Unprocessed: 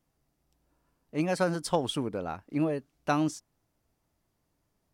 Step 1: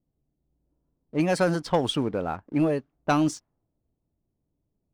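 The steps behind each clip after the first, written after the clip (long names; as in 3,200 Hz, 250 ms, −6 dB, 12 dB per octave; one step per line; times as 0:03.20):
low-pass that shuts in the quiet parts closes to 430 Hz, open at −24 dBFS
leveller curve on the samples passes 1
level +2 dB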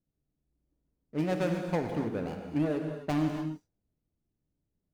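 running median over 41 samples
reverb whose tail is shaped and stops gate 310 ms flat, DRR 3.5 dB
level −6 dB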